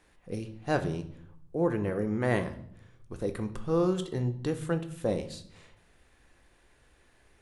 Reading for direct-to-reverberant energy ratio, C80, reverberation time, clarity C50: 7.5 dB, 17.0 dB, 0.65 s, 13.0 dB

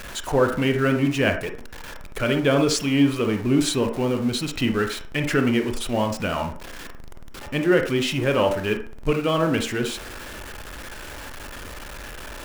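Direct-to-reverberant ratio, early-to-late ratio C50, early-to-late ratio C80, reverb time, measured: 5.0 dB, 8.5 dB, 13.5 dB, 0.45 s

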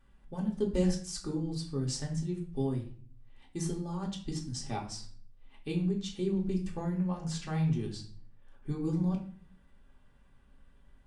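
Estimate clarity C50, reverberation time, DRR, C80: 9.0 dB, 0.50 s, −2.0 dB, 13.0 dB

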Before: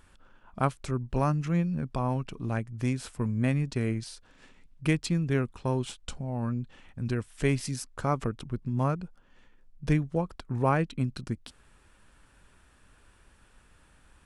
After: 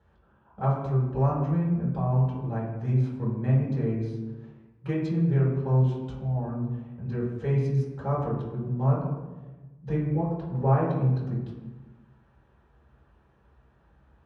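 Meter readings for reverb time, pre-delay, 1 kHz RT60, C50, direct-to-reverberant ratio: 1.2 s, 3 ms, 1.1 s, 1.5 dB, −11.0 dB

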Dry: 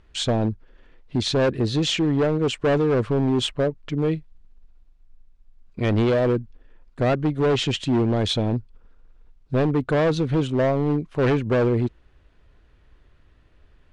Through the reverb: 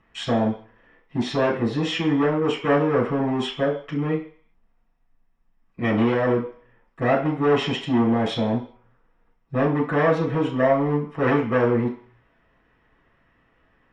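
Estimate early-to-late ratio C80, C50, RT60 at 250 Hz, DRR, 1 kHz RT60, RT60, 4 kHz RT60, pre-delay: 12.0 dB, 8.0 dB, 0.35 s, −7.0 dB, 0.55 s, 0.50 s, 0.65 s, 3 ms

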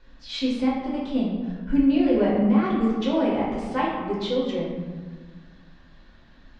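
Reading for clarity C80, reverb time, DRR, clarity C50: 3.0 dB, 1.5 s, −6.5 dB, 1.0 dB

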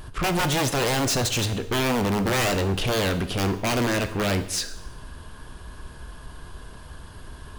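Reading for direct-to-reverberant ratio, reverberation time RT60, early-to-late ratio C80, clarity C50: 9.0 dB, 0.90 s, 14.5 dB, 12.5 dB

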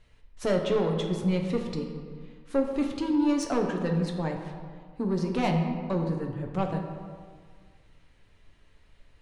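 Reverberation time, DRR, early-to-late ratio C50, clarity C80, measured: 1.9 s, 2.0 dB, 5.0 dB, 6.5 dB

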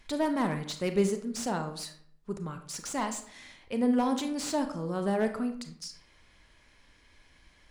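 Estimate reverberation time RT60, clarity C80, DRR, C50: 0.60 s, 13.5 dB, 7.0 dB, 9.5 dB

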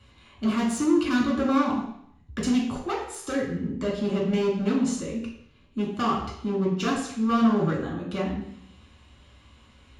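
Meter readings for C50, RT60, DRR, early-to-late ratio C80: 4.5 dB, 0.70 s, −3.0 dB, 7.5 dB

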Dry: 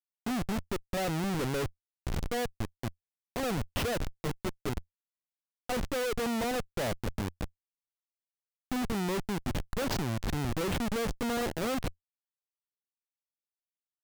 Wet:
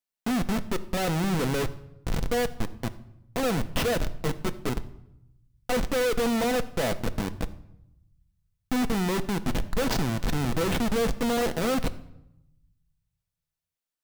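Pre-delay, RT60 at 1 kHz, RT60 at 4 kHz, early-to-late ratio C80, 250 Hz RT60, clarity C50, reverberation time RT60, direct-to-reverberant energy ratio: 4 ms, 0.80 s, 0.60 s, 18.5 dB, 1.1 s, 16.0 dB, 0.85 s, 9.0 dB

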